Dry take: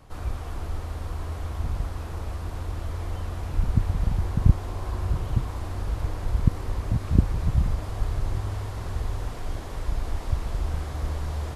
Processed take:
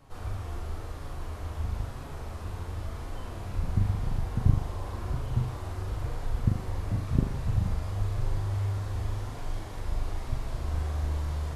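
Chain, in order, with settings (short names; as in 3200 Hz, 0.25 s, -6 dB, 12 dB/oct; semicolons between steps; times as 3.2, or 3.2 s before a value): flange 0.96 Hz, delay 6.9 ms, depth 4.9 ms, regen +43%; flutter echo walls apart 6.9 m, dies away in 0.47 s; gain -1 dB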